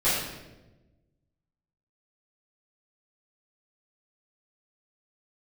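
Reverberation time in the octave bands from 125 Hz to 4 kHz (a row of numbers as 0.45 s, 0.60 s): 1.7 s, 1.5 s, 1.3 s, 0.90 s, 0.85 s, 0.75 s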